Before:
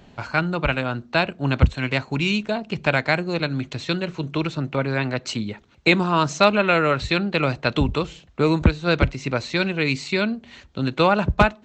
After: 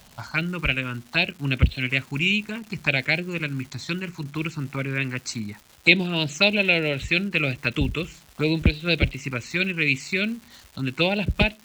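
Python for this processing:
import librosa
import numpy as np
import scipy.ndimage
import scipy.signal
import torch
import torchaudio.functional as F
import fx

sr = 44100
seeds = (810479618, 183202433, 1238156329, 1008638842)

y = fx.env_phaser(x, sr, low_hz=350.0, high_hz=1200.0, full_db=-15.0)
y = fx.high_shelf_res(y, sr, hz=2000.0, db=6.5, q=1.5)
y = fx.dmg_crackle(y, sr, seeds[0], per_s=480.0, level_db=-35.0)
y = F.gain(torch.from_numpy(y), -2.5).numpy()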